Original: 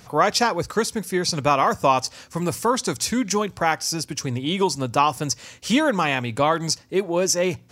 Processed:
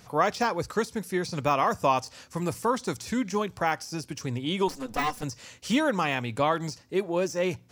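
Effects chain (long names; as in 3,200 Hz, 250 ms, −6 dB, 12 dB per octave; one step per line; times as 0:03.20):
0:04.68–0:05.23: lower of the sound and its delayed copy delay 4 ms
de-essing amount 60%
level −5 dB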